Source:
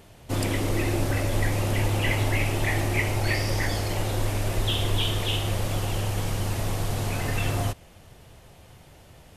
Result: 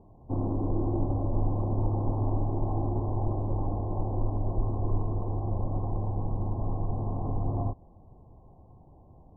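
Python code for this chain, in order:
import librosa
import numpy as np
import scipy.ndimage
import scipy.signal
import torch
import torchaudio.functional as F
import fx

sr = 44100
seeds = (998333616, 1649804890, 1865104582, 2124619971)

y = scipy.signal.sosfilt(scipy.signal.cheby1(6, 6, 1100.0, 'lowpass', fs=sr, output='sos'), x)
y = fx.low_shelf(y, sr, hz=86.0, db=8.0)
y = fx.doppler_dist(y, sr, depth_ms=0.14)
y = y * 10.0 ** (-1.5 / 20.0)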